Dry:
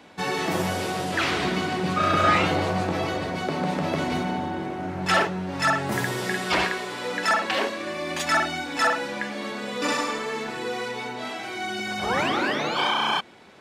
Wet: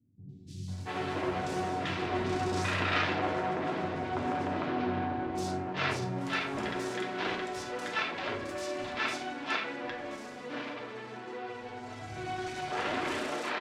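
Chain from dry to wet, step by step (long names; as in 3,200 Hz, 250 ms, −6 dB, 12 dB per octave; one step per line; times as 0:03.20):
phase distortion by the signal itself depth 0.83 ms
high-pass filter 58 Hz
high-shelf EQ 3,200 Hz −8 dB
0:09.47–0:11.48: flanger 1.5 Hz, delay 1.7 ms, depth 7.1 ms, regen −63%
high-frequency loss of the air 80 metres
three-band delay without the direct sound lows, highs, mids 290/680 ms, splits 180/4,800 Hz
convolution reverb RT60 0.50 s, pre-delay 3 ms, DRR 3 dB
level −6 dB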